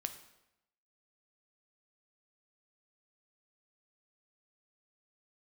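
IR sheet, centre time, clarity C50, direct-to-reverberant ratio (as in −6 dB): 10 ms, 11.0 dB, 8.0 dB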